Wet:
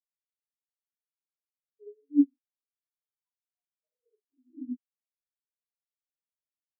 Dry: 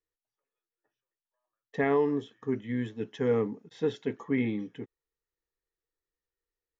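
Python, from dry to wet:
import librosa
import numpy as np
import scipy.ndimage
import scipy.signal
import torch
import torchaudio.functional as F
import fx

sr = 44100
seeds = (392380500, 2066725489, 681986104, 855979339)

y = fx.peak_eq(x, sr, hz=280.0, db=10.5, octaves=2.2)
y = 10.0 ** (-21.0 / 20.0) * np.tanh(y / 10.0 ** (-21.0 / 20.0))
y = fx.comb_fb(y, sr, f0_hz=250.0, decay_s=0.72, harmonics='all', damping=0.0, mix_pct=80)
y = fx.echo_feedback(y, sr, ms=228, feedback_pct=59, wet_db=-6)
y = fx.rev_gated(y, sr, seeds[0], gate_ms=90, shape='rising', drr_db=-3.0)
y = fx.filter_lfo_highpass(y, sr, shape='saw_down', hz=0.42, low_hz=240.0, high_hz=2500.0, q=7.7)
y = fx.spectral_expand(y, sr, expansion=4.0)
y = y * librosa.db_to_amplitude(-4.0)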